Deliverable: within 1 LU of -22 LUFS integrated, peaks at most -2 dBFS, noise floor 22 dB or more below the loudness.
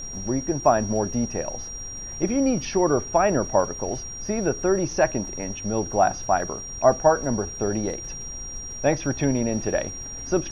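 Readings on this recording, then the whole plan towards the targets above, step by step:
steady tone 5700 Hz; tone level -34 dBFS; noise floor -36 dBFS; noise floor target -47 dBFS; loudness -24.5 LUFS; peak -5.0 dBFS; loudness target -22.0 LUFS
-> notch 5700 Hz, Q 30; noise print and reduce 11 dB; gain +2.5 dB

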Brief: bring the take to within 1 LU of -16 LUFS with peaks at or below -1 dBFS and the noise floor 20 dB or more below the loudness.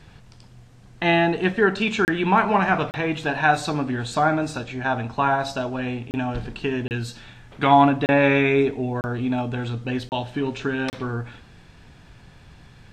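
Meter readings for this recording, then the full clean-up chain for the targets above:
dropouts 8; longest dropout 29 ms; loudness -22.5 LUFS; peak -2.5 dBFS; loudness target -16.0 LUFS
-> interpolate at 2.05/2.91/6.11/6.88/8.06/9.01/10.09/10.9, 29 ms; gain +6.5 dB; limiter -1 dBFS

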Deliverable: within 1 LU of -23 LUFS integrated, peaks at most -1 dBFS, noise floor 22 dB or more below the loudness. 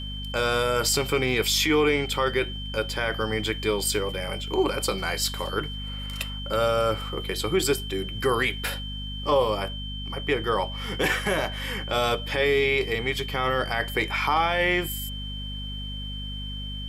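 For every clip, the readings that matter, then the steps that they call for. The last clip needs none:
hum 50 Hz; harmonics up to 250 Hz; hum level -32 dBFS; steady tone 3100 Hz; tone level -36 dBFS; loudness -25.5 LUFS; peak -10.5 dBFS; loudness target -23.0 LUFS
-> notches 50/100/150/200/250 Hz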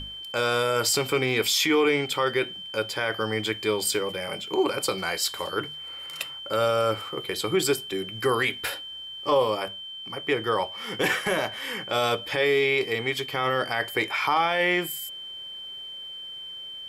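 hum none; steady tone 3100 Hz; tone level -36 dBFS
-> notch 3100 Hz, Q 30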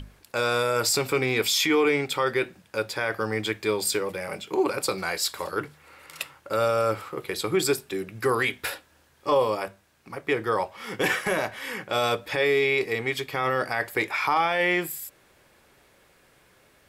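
steady tone none; loudness -25.5 LUFS; peak -11.5 dBFS; loudness target -23.0 LUFS
-> gain +2.5 dB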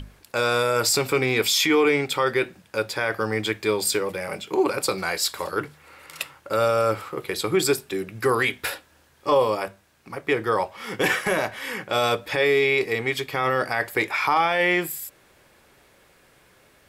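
loudness -23.0 LUFS; peak -9.0 dBFS; noise floor -58 dBFS

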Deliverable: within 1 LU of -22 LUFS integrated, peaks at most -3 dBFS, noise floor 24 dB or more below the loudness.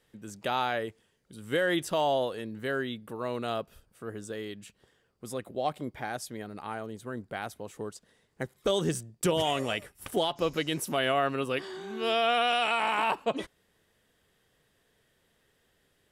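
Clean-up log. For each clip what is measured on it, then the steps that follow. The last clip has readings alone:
loudness -31.0 LUFS; peak -16.5 dBFS; loudness target -22.0 LUFS
-> gain +9 dB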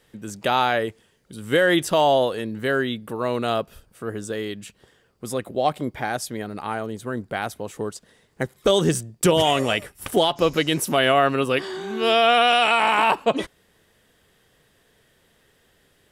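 loudness -22.0 LUFS; peak -7.5 dBFS; noise floor -62 dBFS

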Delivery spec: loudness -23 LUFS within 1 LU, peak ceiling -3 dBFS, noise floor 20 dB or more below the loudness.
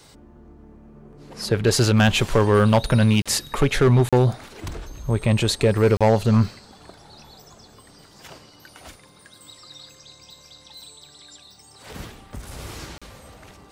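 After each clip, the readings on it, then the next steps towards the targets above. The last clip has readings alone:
clipped 1.5%; flat tops at -10.0 dBFS; dropouts 4; longest dropout 36 ms; loudness -19.5 LUFS; peak -10.0 dBFS; loudness target -23.0 LUFS
-> clip repair -10 dBFS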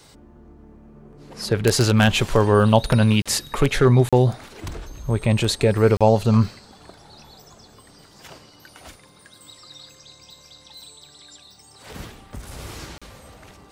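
clipped 0.0%; dropouts 4; longest dropout 36 ms
-> interpolate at 3.22/4.09/5.97/12.98, 36 ms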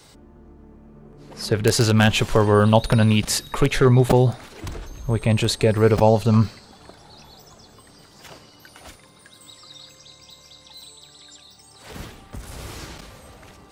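dropouts 0; loudness -18.5 LUFS; peak -1.0 dBFS; loudness target -23.0 LUFS
-> gain -4.5 dB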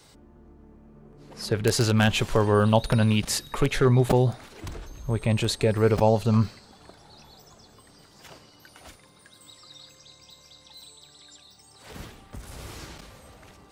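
loudness -23.0 LUFS; peak -5.5 dBFS; noise floor -55 dBFS

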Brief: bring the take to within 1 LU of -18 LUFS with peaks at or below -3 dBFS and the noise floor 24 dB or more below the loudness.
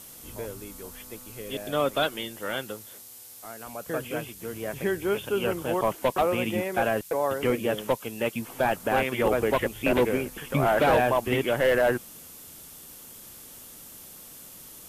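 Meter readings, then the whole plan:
noise floor -46 dBFS; noise floor target -51 dBFS; loudness -26.5 LUFS; peak -13.0 dBFS; loudness target -18.0 LUFS
-> denoiser 6 dB, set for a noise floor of -46 dBFS; gain +8.5 dB

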